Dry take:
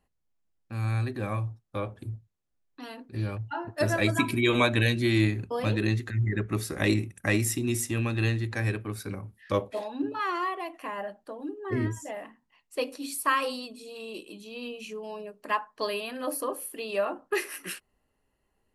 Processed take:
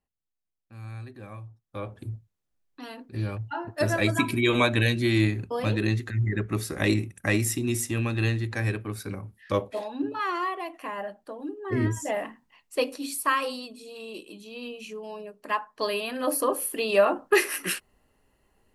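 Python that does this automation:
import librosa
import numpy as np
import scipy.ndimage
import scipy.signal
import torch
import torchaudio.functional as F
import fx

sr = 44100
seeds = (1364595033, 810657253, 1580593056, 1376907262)

y = fx.gain(x, sr, db=fx.line((1.46, -11.0), (1.97, 1.0), (11.7, 1.0), (12.14, 9.0), (13.41, 0.0), (15.5, 0.0), (16.69, 8.0)))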